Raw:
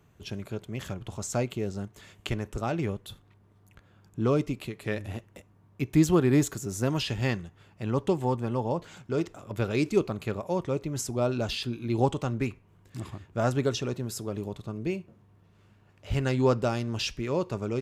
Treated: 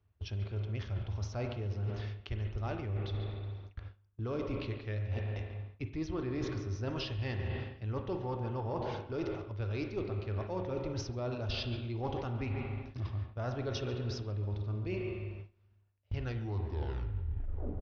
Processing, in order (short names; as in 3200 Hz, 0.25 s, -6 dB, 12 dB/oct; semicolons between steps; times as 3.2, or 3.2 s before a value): tape stop at the end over 1.61 s; speakerphone echo 0.14 s, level -12 dB; spring tank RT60 1.6 s, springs 38/49 ms, chirp 25 ms, DRR 6.5 dB; in parallel at -7 dB: one-sided clip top -28 dBFS; on the sum: steep low-pass 5900 Hz 96 dB/oct; resonant low shelf 120 Hz +8 dB, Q 3; reverse; compressor 12:1, threshold -33 dBFS, peak gain reduction 23 dB; reverse; gate with hold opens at -36 dBFS